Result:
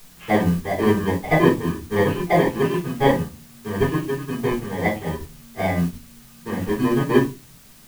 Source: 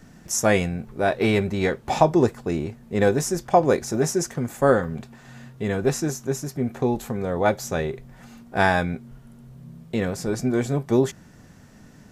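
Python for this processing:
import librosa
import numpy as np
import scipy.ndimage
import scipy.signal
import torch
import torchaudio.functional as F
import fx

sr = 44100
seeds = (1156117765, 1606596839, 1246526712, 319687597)

y = fx.bit_reversed(x, sr, seeds[0], block=32)
y = scipy.signal.sosfilt(scipy.signal.butter(4, 2800.0, 'lowpass', fs=sr, output='sos'), y)
y = fx.room_early_taps(y, sr, ms=(23, 39, 51), db=(-12.0, -11.5, -12.0))
y = fx.stretch_vocoder(y, sr, factor=0.65)
y = fx.room_shoebox(y, sr, seeds[1], volume_m3=150.0, walls='furnished', distance_m=3.8)
y = fx.dmg_noise_colour(y, sr, seeds[2], colour='white', level_db=-37.0)
y = fx.upward_expand(y, sr, threshold_db=-28.0, expansion=1.5)
y = y * librosa.db_to_amplitude(-3.0)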